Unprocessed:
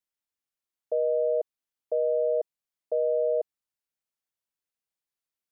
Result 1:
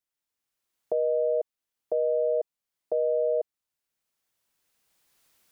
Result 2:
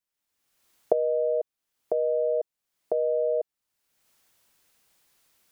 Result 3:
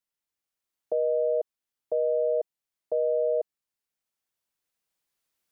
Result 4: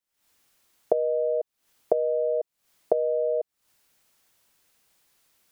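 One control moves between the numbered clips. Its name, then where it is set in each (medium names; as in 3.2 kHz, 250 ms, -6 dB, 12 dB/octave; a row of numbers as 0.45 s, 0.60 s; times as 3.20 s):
recorder AGC, rising by: 13 dB/s, 35 dB/s, 5.1 dB/s, 88 dB/s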